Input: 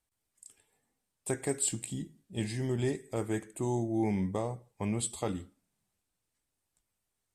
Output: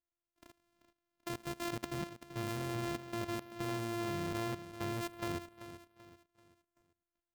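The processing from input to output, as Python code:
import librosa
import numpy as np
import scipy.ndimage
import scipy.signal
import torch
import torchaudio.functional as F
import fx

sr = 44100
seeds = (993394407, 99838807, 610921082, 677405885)

p1 = np.r_[np.sort(x[:len(x) // 128 * 128].reshape(-1, 128), axis=1).ravel(), x[len(x) // 128 * 128:]]
p2 = fx.level_steps(p1, sr, step_db=20)
p3 = p2 + fx.echo_feedback(p2, sr, ms=386, feedback_pct=39, wet_db=-13, dry=0)
y = p3 * 10.0 ** (1.5 / 20.0)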